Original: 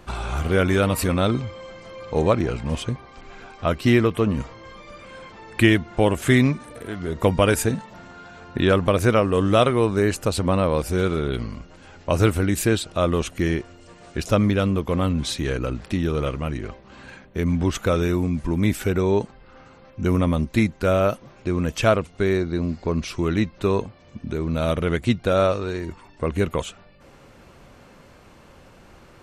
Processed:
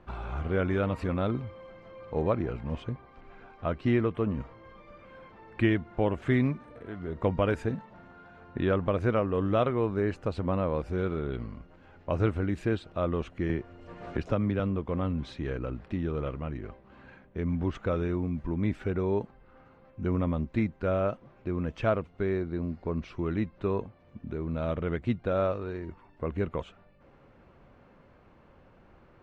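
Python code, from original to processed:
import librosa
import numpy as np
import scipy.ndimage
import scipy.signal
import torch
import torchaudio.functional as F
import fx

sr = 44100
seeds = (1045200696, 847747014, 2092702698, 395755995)

y = scipy.signal.sosfilt(scipy.signal.bessel(2, 1800.0, 'lowpass', norm='mag', fs=sr, output='sos'), x)
y = fx.band_squash(y, sr, depth_pct=70, at=(13.49, 14.6))
y = F.gain(torch.from_numpy(y), -8.0).numpy()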